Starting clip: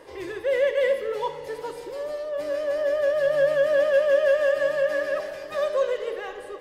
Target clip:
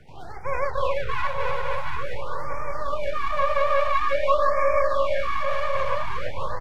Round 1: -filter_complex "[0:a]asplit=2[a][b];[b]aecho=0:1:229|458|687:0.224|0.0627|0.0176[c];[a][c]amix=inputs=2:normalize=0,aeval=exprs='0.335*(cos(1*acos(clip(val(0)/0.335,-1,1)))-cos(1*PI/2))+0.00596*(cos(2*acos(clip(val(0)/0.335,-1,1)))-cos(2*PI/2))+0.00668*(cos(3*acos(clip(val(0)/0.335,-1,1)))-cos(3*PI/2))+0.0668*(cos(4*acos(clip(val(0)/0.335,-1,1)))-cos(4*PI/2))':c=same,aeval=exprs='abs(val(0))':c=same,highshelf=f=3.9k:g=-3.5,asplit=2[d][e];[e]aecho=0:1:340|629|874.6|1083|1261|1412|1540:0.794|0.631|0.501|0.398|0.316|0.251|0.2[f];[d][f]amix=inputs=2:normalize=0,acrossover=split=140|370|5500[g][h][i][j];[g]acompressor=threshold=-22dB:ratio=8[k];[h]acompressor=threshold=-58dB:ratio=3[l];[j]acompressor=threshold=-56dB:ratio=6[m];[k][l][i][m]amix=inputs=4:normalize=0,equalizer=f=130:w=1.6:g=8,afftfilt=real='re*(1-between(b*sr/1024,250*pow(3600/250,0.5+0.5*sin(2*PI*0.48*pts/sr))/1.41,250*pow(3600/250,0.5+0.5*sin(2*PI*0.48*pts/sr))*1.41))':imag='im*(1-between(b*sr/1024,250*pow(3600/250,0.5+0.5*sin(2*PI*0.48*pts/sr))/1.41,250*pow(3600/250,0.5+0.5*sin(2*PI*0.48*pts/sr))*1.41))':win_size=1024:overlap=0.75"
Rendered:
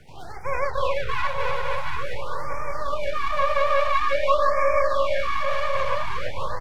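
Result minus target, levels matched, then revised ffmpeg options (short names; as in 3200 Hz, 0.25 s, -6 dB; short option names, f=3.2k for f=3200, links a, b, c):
8000 Hz band +3.5 dB
-filter_complex "[0:a]asplit=2[a][b];[b]aecho=0:1:229|458|687:0.224|0.0627|0.0176[c];[a][c]amix=inputs=2:normalize=0,aeval=exprs='0.335*(cos(1*acos(clip(val(0)/0.335,-1,1)))-cos(1*PI/2))+0.00596*(cos(2*acos(clip(val(0)/0.335,-1,1)))-cos(2*PI/2))+0.00668*(cos(3*acos(clip(val(0)/0.335,-1,1)))-cos(3*PI/2))+0.0668*(cos(4*acos(clip(val(0)/0.335,-1,1)))-cos(4*PI/2))':c=same,aeval=exprs='abs(val(0))':c=same,highshelf=f=3.9k:g=-12.5,asplit=2[d][e];[e]aecho=0:1:340|629|874.6|1083|1261|1412|1540:0.794|0.631|0.501|0.398|0.316|0.251|0.2[f];[d][f]amix=inputs=2:normalize=0,acrossover=split=140|370|5500[g][h][i][j];[g]acompressor=threshold=-22dB:ratio=8[k];[h]acompressor=threshold=-58dB:ratio=3[l];[j]acompressor=threshold=-56dB:ratio=6[m];[k][l][i][m]amix=inputs=4:normalize=0,equalizer=f=130:w=1.6:g=8,afftfilt=real='re*(1-between(b*sr/1024,250*pow(3600/250,0.5+0.5*sin(2*PI*0.48*pts/sr))/1.41,250*pow(3600/250,0.5+0.5*sin(2*PI*0.48*pts/sr))*1.41))':imag='im*(1-between(b*sr/1024,250*pow(3600/250,0.5+0.5*sin(2*PI*0.48*pts/sr))/1.41,250*pow(3600/250,0.5+0.5*sin(2*PI*0.48*pts/sr))*1.41))':win_size=1024:overlap=0.75"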